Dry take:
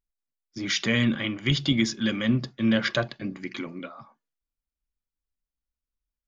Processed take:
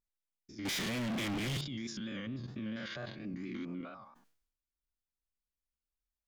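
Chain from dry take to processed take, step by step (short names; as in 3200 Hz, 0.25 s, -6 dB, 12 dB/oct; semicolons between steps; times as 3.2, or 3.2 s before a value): stepped spectrum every 0.1 s; 3.34–3.81 resonant low shelf 380 Hz +6.5 dB, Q 1.5; compressor 2.5:1, threshold -32 dBFS, peak gain reduction 9 dB; limiter -28 dBFS, peak gain reduction 9 dB; 0.65–1.61 sample leveller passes 5; vibrato 4.4 Hz 74 cents; sustainer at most 75 dB/s; gain -5 dB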